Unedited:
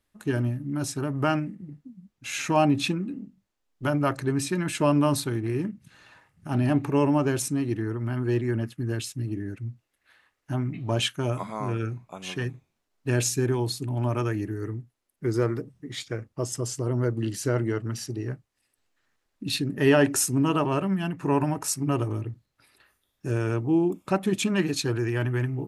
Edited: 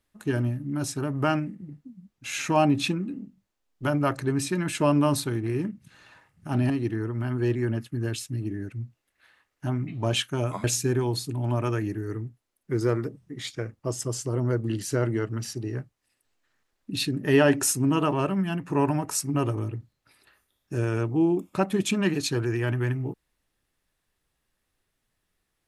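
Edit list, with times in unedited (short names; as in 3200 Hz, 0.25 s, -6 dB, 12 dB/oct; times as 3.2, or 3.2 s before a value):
6.7–7.56 cut
11.5–13.17 cut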